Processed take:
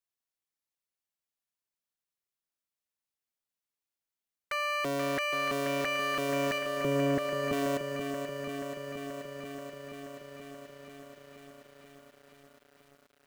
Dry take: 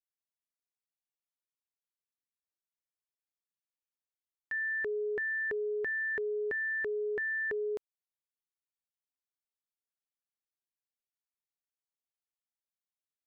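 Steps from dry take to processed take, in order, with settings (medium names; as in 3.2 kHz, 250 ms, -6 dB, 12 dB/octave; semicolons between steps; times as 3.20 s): cycle switcher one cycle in 3, inverted; 6.58–7.53 s: tilt shelf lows +8.5 dB, about 680 Hz; bit-crushed delay 481 ms, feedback 80%, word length 10-bit, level -7.5 dB; trim +2 dB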